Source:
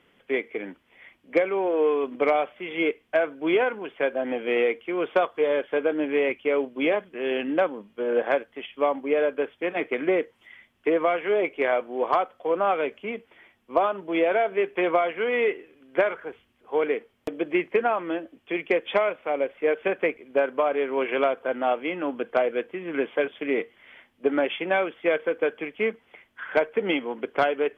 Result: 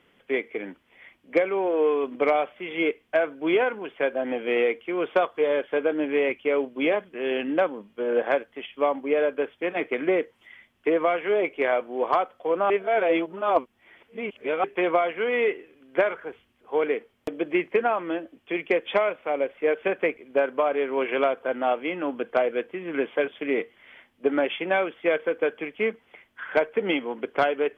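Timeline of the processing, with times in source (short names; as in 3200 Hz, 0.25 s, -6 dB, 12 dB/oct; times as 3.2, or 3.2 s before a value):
12.7–14.64 reverse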